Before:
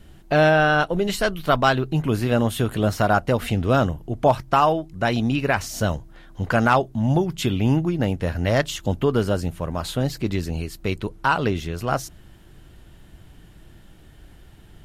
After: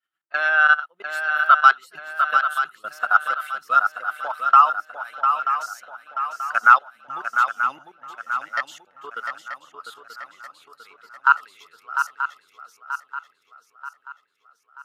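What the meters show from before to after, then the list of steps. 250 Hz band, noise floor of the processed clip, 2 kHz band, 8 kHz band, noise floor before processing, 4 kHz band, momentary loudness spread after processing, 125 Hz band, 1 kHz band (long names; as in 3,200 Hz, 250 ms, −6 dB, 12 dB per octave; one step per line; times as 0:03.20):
below −30 dB, −68 dBFS, +5.5 dB, can't be measured, −48 dBFS, −7.0 dB, 22 LU, below −40 dB, +4.5 dB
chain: spectral dynamics exaggerated over time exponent 1.5
output level in coarse steps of 21 dB
high-pass with resonance 1,300 Hz, resonance Q 7.7
feedback echo with a long and a short gap by turns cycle 933 ms, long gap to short 3 to 1, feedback 48%, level −7 dB
one half of a high-frequency compander decoder only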